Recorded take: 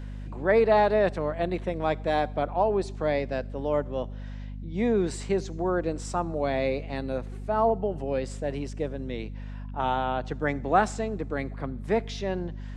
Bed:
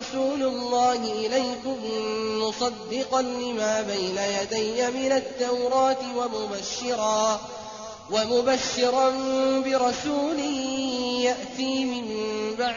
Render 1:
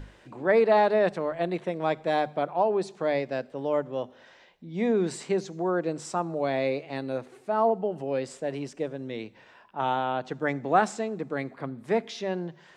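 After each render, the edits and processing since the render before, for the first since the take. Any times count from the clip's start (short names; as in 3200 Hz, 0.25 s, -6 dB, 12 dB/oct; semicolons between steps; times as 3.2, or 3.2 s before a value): notches 50/100/150/200/250 Hz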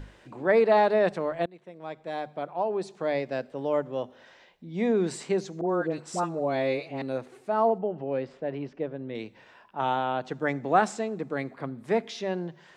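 1.46–3.44 fade in, from -24 dB; 5.61–7.02 dispersion highs, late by 79 ms, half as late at 1100 Hz; 7.78–9.15 air absorption 310 m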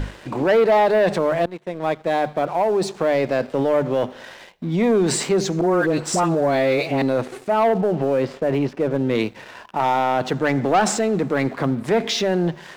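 in parallel at -1 dB: negative-ratio compressor -35 dBFS, ratio -1; on the sum: sample leveller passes 2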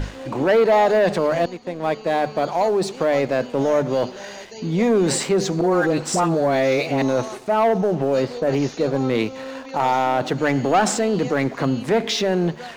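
add bed -11 dB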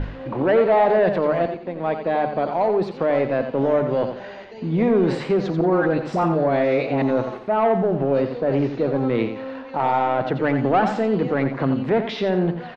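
air absorption 360 m; on a send: feedback echo 87 ms, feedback 25%, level -8.5 dB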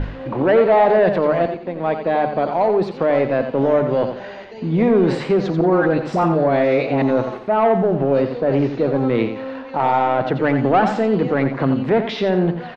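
gain +3 dB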